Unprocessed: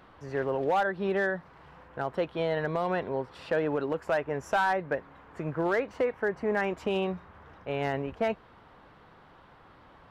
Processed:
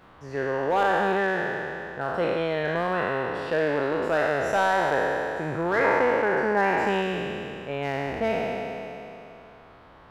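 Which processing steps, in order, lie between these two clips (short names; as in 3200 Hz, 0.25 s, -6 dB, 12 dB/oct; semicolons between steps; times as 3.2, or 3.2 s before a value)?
spectral trails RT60 2.94 s; 5.84–7.02 bell 910 Hz +11.5 dB 0.46 oct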